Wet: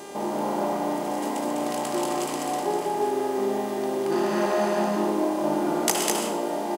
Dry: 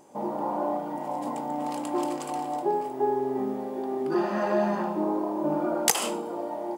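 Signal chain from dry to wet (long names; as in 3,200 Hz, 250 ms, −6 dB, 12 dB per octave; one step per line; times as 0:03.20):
compressor on every frequency bin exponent 0.6
loudspeakers that aren't time-aligned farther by 43 metres −10 dB, 69 metres −3 dB
hum with harmonics 400 Hz, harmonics 28, −40 dBFS −6 dB per octave
level −3 dB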